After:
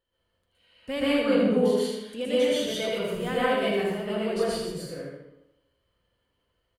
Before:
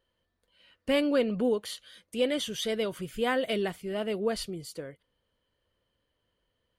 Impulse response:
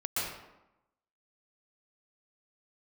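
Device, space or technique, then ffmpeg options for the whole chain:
bathroom: -filter_complex "[0:a]asettb=1/sr,asplit=3[a][b][c];[a]atrim=end=1.294[d];[b]atrim=start=1.29:end=2.21,asetpts=PTS-STARTPTS,afade=t=in:d=0.004:c=qsin,afade=t=out:st=0.916:d=0.004:c=qsin,equalizer=f=270:w=1.1:g=4.5[e];[c]atrim=start=2.206[f];[d][e]acrossfade=d=0.004:c1=hsin:c2=qsin[g];[g][f]acrossfade=d=0.004:c1=qsin:c2=hsin[h];[1:a]atrim=start_sample=2205[i];[h][i]afir=irnorm=-1:irlink=0,aecho=1:1:80|160|240|320:0.501|0.15|0.0451|0.0135,volume=-4dB"

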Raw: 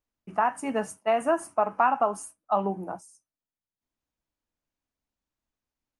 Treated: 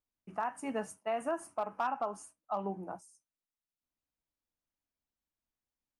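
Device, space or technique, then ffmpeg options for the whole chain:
clipper into limiter: -filter_complex "[0:a]asoftclip=type=hard:threshold=-13.5dB,alimiter=limit=-17.5dB:level=0:latency=1:release=177,asettb=1/sr,asplit=3[a][b][c];[a]atrim=end=1.844[d];[b]atrim=start=1.84:end=2.91,asetpts=PTS-STARTPTS,afade=t=in:d=0.004:c=qsin,afade=t=out:st=1.066:d=0.004:c=qsin,lowpass=8.5k[e];[c]atrim=start=2.906[f];[d][e]acrossfade=d=0.004:c1=hsin:c2=qsin[g];[g][f]acrossfade=d=0.004:c1=qsin:c2=hsin,volume=-7dB"

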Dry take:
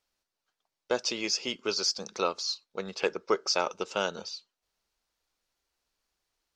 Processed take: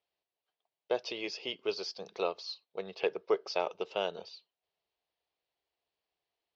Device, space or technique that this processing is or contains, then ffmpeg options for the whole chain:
guitar cabinet: -af "highpass=92,equalizer=f=230:t=q:w=4:g=-9,equalizer=f=430:t=q:w=4:g=5,equalizer=f=690:t=q:w=4:g=7,equalizer=f=1.4k:t=q:w=4:g=-8,equalizer=f=3k:t=q:w=4:g=3,lowpass=f=4.2k:w=0.5412,lowpass=f=4.2k:w=1.3066,volume=-5.5dB"

